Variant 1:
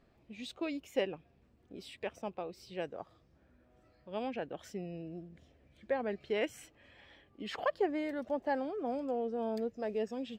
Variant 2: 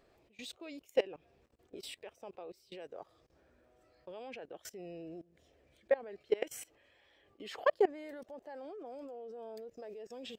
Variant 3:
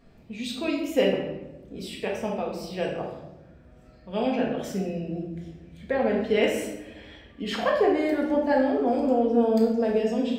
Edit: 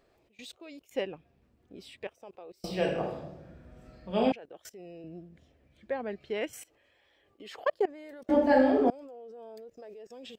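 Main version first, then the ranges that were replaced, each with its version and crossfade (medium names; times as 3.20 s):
2
0.91–2.07 s: from 1
2.64–4.32 s: from 3
5.04–6.53 s: from 1
8.29–8.90 s: from 3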